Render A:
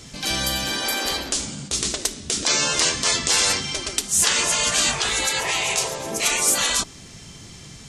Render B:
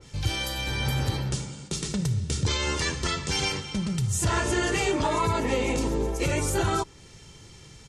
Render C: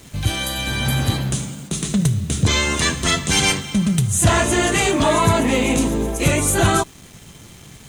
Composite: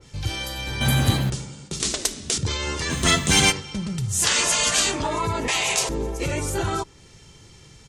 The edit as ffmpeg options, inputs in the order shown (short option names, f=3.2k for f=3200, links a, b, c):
-filter_complex "[2:a]asplit=2[a][b];[0:a]asplit=3[c][d][e];[1:a]asplit=6[f][g][h][i][j][k];[f]atrim=end=0.812[l];[a]atrim=start=0.808:end=1.302[m];[g]atrim=start=1.298:end=1.802[n];[c]atrim=start=1.798:end=2.382[o];[h]atrim=start=2.378:end=2.93[p];[b]atrim=start=2.89:end=3.53[q];[i]atrim=start=3.49:end=4.32[r];[d]atrim=start=4.08:end=5.03[s];[j]atrim=start=4.79:end=5.482[t];[e]atrim=start=5.478:end=5.892[u];[k]atrim=start=5.888[v];[l][m]acrossfade=d=0.004:c1=hsin:c2=hsin[w];[w][n]acrossfade=d=0.004:c1=hsin:c2=hsin[x];[x][o]acrossfade=d=0.004:c1=hsin:c2=hsin[y];[y][p]acrossfade=d=0.004:c1=hsin:c2=hsin[z];[z][q]acrossfade=d=0.04:c1=tri:c2=tri[aa];[aa][r]acrossfade=d=0.04:c1=tri:c2=tri[ab];[ab][s]acrossfade=d=0.24:c1=tri:c2=tri[ac];[ac][t]acrossfade=d=0.24:c1=tri:c2=tri[ad];[ad][u]acrossfade=d=0.004:c1=hsin:c2=hsin[ae];[ae][v]acrossfade=d=0.004:c1=hsin:c2=hsin"